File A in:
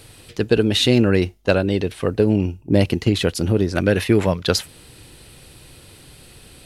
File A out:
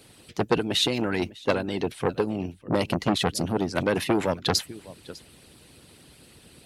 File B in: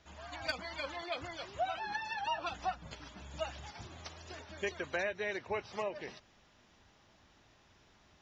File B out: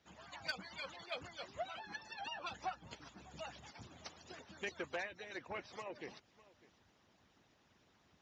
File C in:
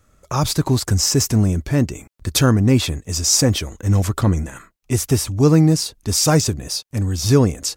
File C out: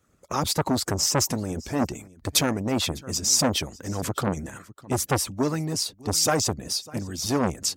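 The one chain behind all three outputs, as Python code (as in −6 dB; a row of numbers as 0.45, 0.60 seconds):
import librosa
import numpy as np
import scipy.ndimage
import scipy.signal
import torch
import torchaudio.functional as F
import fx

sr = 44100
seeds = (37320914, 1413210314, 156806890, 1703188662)

y = scipy.signal.sosfilt(scipy.signal.butter(2, 140.0, 'highpass', fs=sr, output='sos'), x)
y = y + 10.0 ** (-21.0 / 20.0) * np.pad(y, (int(602 * sr / 1000.0), 0))[:len(y)]
y = fx.hpss(y, sr, part='harmonic', gain_db=-17)
y = fx.low_shelf(y, sr, hz=200.0, db=10.0)
y = fx.transformer_sat(y, sr, knee_hz=1200.0)
y = F.gain(torch.from_numpy(y), -2.0).numpy()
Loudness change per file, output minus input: −7.0, −7.0, −7.5 LU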